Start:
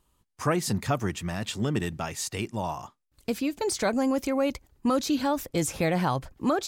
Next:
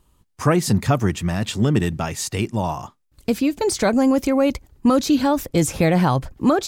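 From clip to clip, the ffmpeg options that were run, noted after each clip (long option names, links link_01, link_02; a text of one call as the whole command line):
ffmpeg -i in.wav -af "lowshelf=frequency=360:gain=5.5,volume=5.5dB" out.wav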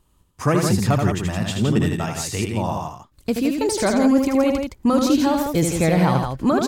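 ffmpeg -i in.wav -af "aecho=1:1:78.72|166.2:0.562|0.501,volume=-2dB" out.wav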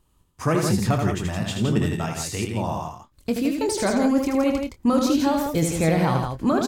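ffmpeg -i in.wav -filter_complex "[0:a]asplit=2[link_01][link_02];[link_02]adelay=25,volume=-10dB[link_03];[link_01][link_03]amix=inputs=2:normalize=0,volume=-3dB" out.wav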